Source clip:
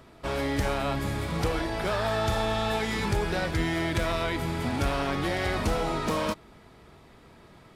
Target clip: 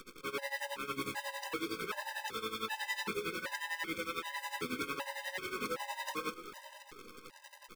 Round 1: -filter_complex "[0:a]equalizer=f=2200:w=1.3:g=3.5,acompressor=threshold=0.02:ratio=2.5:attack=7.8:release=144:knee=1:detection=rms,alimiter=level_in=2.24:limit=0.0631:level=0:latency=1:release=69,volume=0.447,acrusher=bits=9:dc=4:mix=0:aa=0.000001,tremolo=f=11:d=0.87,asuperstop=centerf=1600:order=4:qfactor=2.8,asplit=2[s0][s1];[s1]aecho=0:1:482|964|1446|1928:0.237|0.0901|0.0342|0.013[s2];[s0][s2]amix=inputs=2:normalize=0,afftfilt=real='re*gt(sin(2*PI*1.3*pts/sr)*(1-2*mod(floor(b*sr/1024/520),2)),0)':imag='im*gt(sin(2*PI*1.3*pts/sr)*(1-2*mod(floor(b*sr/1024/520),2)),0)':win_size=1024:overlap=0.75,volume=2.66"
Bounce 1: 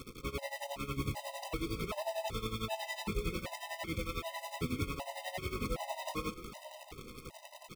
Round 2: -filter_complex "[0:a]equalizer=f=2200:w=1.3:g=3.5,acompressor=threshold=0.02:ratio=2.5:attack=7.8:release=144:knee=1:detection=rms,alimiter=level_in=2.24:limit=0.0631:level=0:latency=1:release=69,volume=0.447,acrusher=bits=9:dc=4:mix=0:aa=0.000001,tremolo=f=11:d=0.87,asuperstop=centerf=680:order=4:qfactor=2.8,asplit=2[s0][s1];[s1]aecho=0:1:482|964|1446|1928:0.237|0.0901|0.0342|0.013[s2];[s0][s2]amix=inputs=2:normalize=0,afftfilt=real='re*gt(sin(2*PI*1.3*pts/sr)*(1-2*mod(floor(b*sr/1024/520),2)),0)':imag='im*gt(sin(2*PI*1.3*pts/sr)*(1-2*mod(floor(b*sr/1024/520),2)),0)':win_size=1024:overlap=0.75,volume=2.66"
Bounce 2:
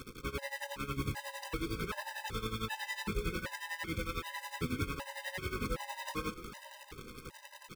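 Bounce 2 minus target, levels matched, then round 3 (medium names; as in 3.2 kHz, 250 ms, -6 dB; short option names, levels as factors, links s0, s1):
250 Hz band +3.5 dB
-filter_complex "[0:a]equalizer=f=2200:w=1.3:g=3.5,acompressor=threshold=0.02:ratio=2.5:attack=7.8:release=144:knee=1:detection=rms,highpass=330,alimiter=level_in=2.24:limit=0.0631:level=0:latency=1:release=69,volume=0.447,acrusher=bits=9:dc=4:mix=0:aa=0.000001,tremolo=f=11:d=0.87,asuperstop=centerf=680:order=4:qfactor=2.8,asplit=2[s0][s1];[s1]aecho=0:1:482|964|1446|1928:0.237|0.0901|0.0342|0.013[s2];[s0][s2]amix=inputs=2:normalize=0,afftfilt=real='re*gt(sin(2*PI*1.3*pts/sr)*(1-2*mod(floor(b*sr/1024/520),2)),0)':imag='im*gt(sin(2*PI*1.3*pts/sr)*(1-2*mod(floor(b*sr/1024/520),2)),0)':win_size=1024:overlap=0.75,volume=2.66"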